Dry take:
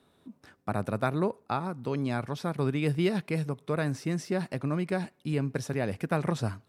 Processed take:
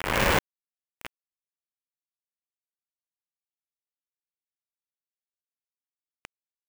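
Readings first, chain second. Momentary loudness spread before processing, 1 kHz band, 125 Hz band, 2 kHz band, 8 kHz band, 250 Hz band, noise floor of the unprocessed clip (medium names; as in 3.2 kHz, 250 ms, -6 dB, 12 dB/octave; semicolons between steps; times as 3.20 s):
5 LU, 0.0 dB, -11.5 dB, +4.5 dB, +4.5 dB, -12.0 dB, -67 dBFS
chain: reverse spectral sustain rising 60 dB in 1.97 s; inverted gate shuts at -25 dBFS, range -26 dB; peaking EQ 710 Hz -6.5 dB 0.63 oct; companded quantiser 2-bit; resonant high shelf 3.2 kHz -6.5 dB, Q 3; polarity switched at an audio rate 300 Hz; trim +8 dB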